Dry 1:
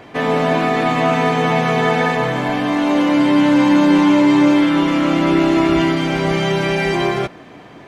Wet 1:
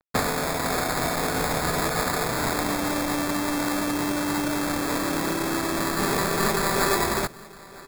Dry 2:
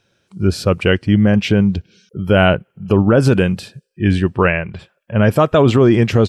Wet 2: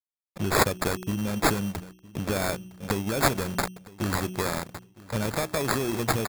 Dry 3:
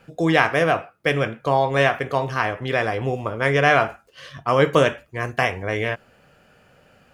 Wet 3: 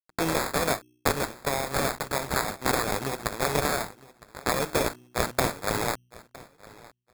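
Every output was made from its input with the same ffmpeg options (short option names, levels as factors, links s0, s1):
-filter_complex "[0:a]aeval=exprs='sgn(val(0))*max(abs(val(0))-0.0316,0)':c=same,lowshelf=f=65:g=-7,bandreject=f=61.3:t=h:w=4,bandreject=f=122.6:t=h:w=4,bandreject=f=183.9:t=h:w=4,bandreject=f=245.2:t=h:w=4,bandreject=f=306.5:t=h:w=4,bandreject=f=367.8:t=h:w=4,acompressor=threshold=0.0447:ratio=6,aexciter=amount=14.7:drive=6.7:freq=4000,acrusher=samples=15:mix=1:aa=0.000001,asplit=2[s0][s1];[s1]aecho=0:1:961|1922:0.0891|0.0178[s2];[s0][s2]amix=inputs=2:normalize=0,adynamicequalizer=threshold=0.00708:dfrequency=6200:dqfactor=0.7:tfrequency=6200:tqfactor=0.7:attack=5:release=100:ratio=0.375:range=2.5:mode=boostabove:tftype=highshelf"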